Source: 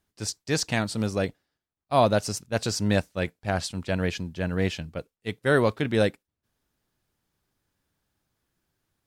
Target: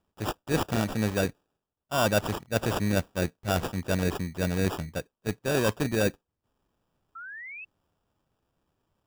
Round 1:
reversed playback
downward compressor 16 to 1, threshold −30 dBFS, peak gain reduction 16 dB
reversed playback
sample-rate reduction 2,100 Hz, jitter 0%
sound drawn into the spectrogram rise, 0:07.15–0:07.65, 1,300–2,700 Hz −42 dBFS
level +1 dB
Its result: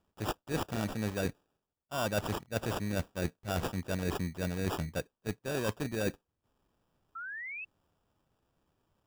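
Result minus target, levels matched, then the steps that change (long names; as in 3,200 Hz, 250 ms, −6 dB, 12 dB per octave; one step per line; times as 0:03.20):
downward compressor: peak gain reduction +8.5 dB
change: downward compressor 16 to 1, threshold −21 dBFS, peak gain reduction 7.5 dB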